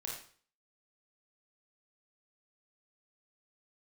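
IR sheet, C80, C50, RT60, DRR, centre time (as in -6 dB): 7.0 dB, 2.0 dB, 0.45 s, -3.0 dB, 43 ms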